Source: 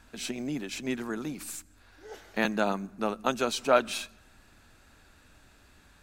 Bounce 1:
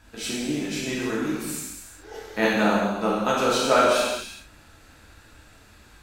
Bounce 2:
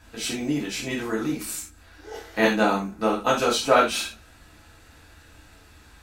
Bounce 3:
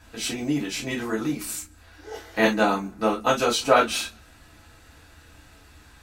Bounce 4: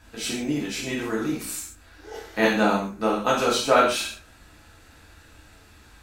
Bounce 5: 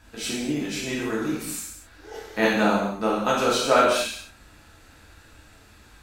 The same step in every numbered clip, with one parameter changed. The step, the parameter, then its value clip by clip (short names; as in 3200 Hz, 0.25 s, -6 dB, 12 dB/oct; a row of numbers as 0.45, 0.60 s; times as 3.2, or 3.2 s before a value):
non-linear reverb, gate: 450, 120, 80, 180, 290 ms